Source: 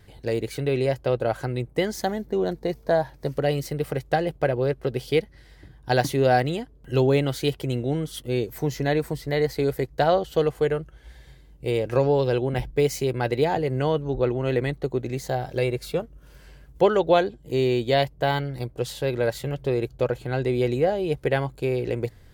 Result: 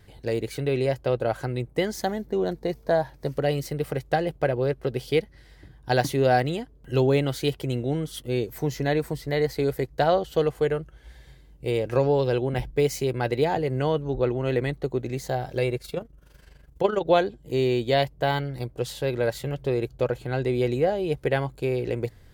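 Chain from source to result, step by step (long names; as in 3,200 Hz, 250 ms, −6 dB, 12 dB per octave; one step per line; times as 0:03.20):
0:15.77–0:17.08: amplitude modulation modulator 24 Hz, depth 55%
level −1 dB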